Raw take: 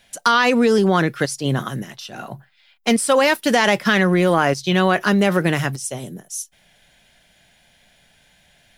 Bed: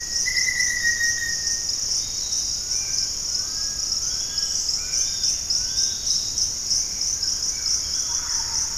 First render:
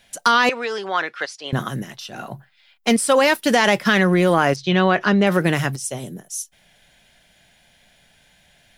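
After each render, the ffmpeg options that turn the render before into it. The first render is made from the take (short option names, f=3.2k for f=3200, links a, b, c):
-filter_complex "[0:a]asettb=1/sr,asplit=3[a][b][c];[a]atrim=end=0.494[d];[b]atrim=start=0.49:end=1.53,asetpts=PTS-STARTPTS,afade=t=in:d=0.004:c=qsin,afade=t=out:st=1.036:d=0.004:c=qsin,highpass=780,lowpass=4.2k[e];[c]atrim=start=1.526[f];[d][e]acrossfade=d=0.004:c1=hsin:c2=qsin[g];[g][f]acrossfade=d=0.004:c1=qsin:c2=hsin,asettb=1/sr,asplit=3[h][i][j];[h]atrim=end=4.564[k];[i]atrim=start=4.56:end=5.27,asetpts=PTS-STARTPTS,afade=t=in:d=0.004:c=qsin,afade=t=out:st=0.706:d=0.004:c=qsin,lowpass=4.4k[l];[j]atrim=start=5.266[m];[k][l]acrossfade=d=0.004:c1=hsin:c2=qsin[n];[n][m]acrossfade=d=0.004:c1=qsin:c2=hsin"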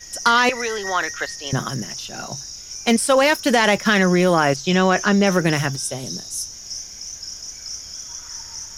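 -filter_complex "[1:a]volume=-9.5dB[a];[0:a][a]amix=inputs=2:normalize=0"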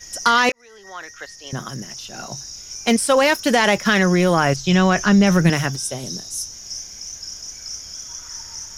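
-filter_complex "[0:a]asettb=1/sr,asplit=3[a][b][c];[a]atrim=end=3.814[d];[b]atrim=start=3.81:end=5.5,asetpts=PTS-STARTPTS,afade=t=in:d=0.004:c=qsin,afade=t=out:st=1.686:d=0.004:c=qsin,asubboost=boost=7.5:cutoff=180[e];[c]atrim=start=5.496[f];[d][e]acrossfade=d=0.004:c1=hsin:c2=qsin[g];[g][f]acrossfade=d=0.004:c1=qsin:c2=hsin,asplit=2[h][i];[h]atrim=end=0.52,asetpts=PTS-STARTPTS,afade=t=out:st=0.516:d=0.004:c=hsin[j];[i]atrim=start=0.52,asetpts=PTS-STARTPTS,afade=t=in:d=2.05[k];[j][k]concat=n=2:v=0:a=1"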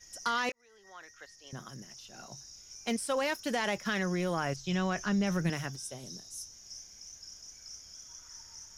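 -af "volume=-15.5dB"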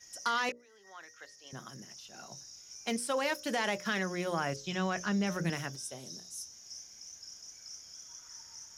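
-af "highpass=f=140:p=1,bandreject=f=60:t=h:w=6,bandreject=f=120:t=h:w=6,bandreject=f=180:t=h:w=6,bandreject=f=240:t=h:w=6,bandreject=f=300:t=h:w=6,bandreject=f=360:t=h:w=6,bandreject=f=420:t=h:w=6,bandreject=f=480:t=h:w=6,bandreject=f=540:t=h:w=6,bandreject=f=600:t=h:w=6"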